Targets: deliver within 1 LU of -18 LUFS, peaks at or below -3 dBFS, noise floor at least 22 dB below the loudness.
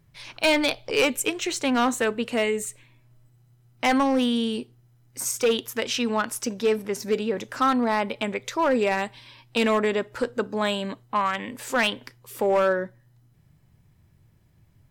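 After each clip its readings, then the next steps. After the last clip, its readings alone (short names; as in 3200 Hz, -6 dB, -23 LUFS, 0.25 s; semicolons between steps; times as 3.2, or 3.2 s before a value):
clipped 1.2%; flat tops at -15.5 dBFS; loudness -25.0 LUFS; peak -15.5 dBFS; loudness target -18.0 LUFS
-> clip repair -15.5 dBFS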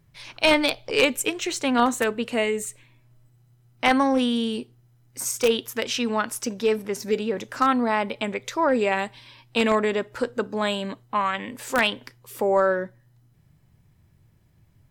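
clipped 0.0%; loudness -24.0 LUFS; peak -6.5 dBFS; loudness target -18.0 LUFS
-> gain +6 dB; limiter -3 dBFS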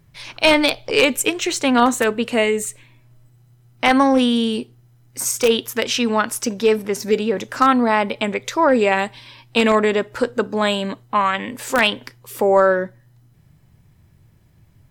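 loudness -18.5 LUFS; peak -3.0 dBFS; noise floor -54 dBFS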